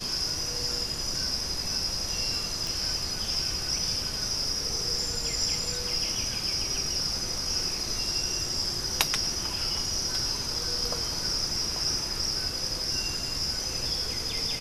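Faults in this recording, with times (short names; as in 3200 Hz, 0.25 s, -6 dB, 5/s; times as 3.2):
2.67 pop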